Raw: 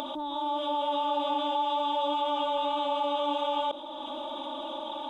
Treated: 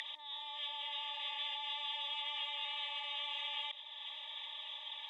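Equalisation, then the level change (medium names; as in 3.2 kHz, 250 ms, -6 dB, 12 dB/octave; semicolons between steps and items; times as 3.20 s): Butterworth band-stop 1.4 kHz, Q 2.2; ladder band-pass 2 kHz, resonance 80%; tilt EQ +3.5 dB/octave; +6.0 dB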